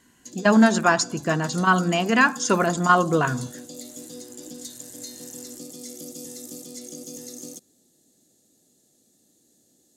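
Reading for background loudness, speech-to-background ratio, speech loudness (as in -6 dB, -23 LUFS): -38.0 LUFS, 17.5 dB, -20.5 LUFS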